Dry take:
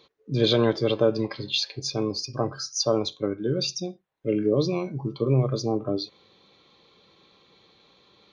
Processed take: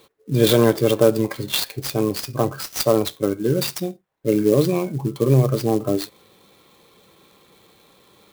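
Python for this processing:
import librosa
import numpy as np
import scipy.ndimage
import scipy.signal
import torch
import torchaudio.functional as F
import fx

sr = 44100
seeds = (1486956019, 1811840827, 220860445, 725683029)

y = fx.high_shelf(x, sr, hz=4700.0, db=-6.0)
y = fx.clock_jitter(y, sr, seeds[0], jitter_ms=0.034)
y = y * 10.0 ** (6.0 / 20.0)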